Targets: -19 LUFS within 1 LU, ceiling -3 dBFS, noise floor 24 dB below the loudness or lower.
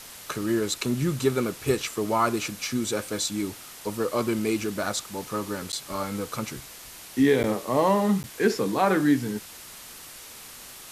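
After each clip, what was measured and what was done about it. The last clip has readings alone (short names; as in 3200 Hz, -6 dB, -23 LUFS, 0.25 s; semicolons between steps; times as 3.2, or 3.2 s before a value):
dropouts 3; longest dropout 9.8 ms; noise floor -44 dBFS; noise floor target -51 dBFS; loudness -26.5 LUFS; peak -8.0 dBFS; loudness target -19.0 LUFS
-> interpolate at 5.72/7.43/8.23, 9.8 ms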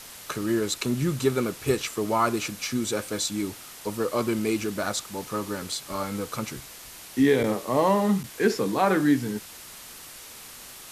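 dropouts 0; noise floor -44 dBFS; noise floor target -51 dBFS
-> denoiser 7 dB, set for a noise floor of -44 dBFS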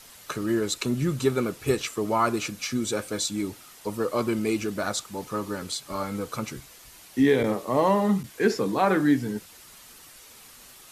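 noise floor -50 dBFS; noise floor target -51 dBFS
-> denoiser 6 dB, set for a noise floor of -50 dBFS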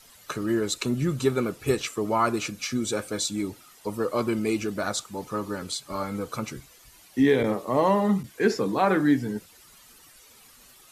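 noise floor -54 dBFS; loudness -26.5 LUFS; peak -8.0 dBFS; loudness target -19.0 LUFS
-> gain +7.5 dB; limiter -3 dBFS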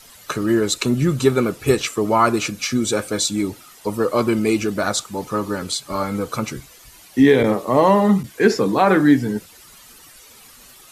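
loudness -19.0 LUFS; peak -3.0 dBFS; noise floor -46 dBFS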